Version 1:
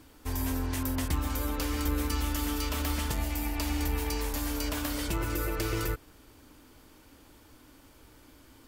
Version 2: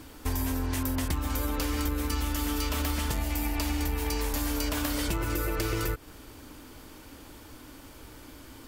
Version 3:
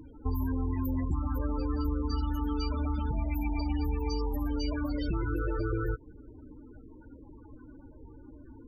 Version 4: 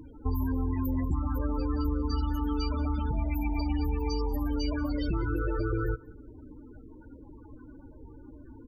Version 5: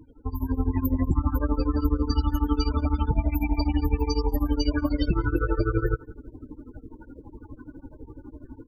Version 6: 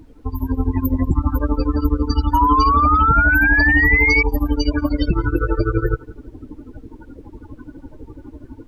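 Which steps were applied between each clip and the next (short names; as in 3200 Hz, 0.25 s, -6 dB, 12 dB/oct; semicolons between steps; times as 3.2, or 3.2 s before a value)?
compressor, threshold -34 dBFS, peak gain reduction 9.5 dB; gain +8 dB
loudest bins only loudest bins 16
echo 0.188 s -23.5 dB; gain +1.5 dB
AGC gain up to 9.5 dB; tremolo triangle 12 Hz, depth 95%
added noise brown -54 dBFS; painted sound rise, 2.33–4.23, 940–2300 Hz -21 dBFS; gain +5.5 dB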